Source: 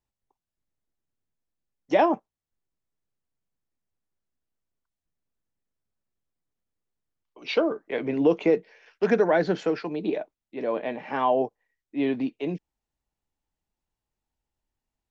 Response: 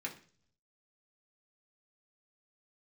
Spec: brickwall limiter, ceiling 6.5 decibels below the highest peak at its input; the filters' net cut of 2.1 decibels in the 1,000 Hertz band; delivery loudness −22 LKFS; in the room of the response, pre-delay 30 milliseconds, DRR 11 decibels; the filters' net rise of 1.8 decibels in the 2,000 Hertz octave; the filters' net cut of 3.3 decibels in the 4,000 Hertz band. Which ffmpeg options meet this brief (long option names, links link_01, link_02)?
-filter_complex "[0:a]equalizer=frequency=1000:width_type=o:gain=-3.5,equalizer=frequency=2000:width_type=o:gain=5,equalizer=frequency=4000:width_type=o:gain=-6.5,alimiter=limit=-16dB:level=0:latency=1,asplit=2[link_01][link_02];[1:a]atrim=start_sample=2205,adelay=30[link_03];[link_02][link_03]afir=irnorm=-1:irlink=0,volume=-12dB[link_04];[link_01][link_04]amix=inputs=2:normalize=0,volume=6.5dB"